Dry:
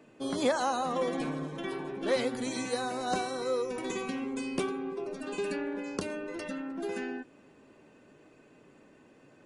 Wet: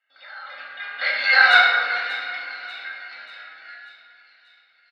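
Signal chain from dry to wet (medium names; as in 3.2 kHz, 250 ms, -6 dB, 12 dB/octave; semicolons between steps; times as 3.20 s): Doppler pass-by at 2.82 s, 22 m/s, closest 4.2 m; elliptic low-pass 4.6 kHz, stop band 40 dB; band-stop 2.4 kHz, Q 24; granular stretch 0.52×, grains 21 ms; level rider gain up to 13.5 dB; hard clipper -10 dBFS, distortion -37 dB; resonant high-pass 1.7 kHz, resonance Q 3.6; comb 1.4 ms, depth 59%; on a send: two-band feedback delay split 2.4 kHz, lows 366 ms, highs 588 ms, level -13.5 dB; on the sum: simulated room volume 660 m³, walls mixed, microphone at 2.1 m; trim +5.5 dB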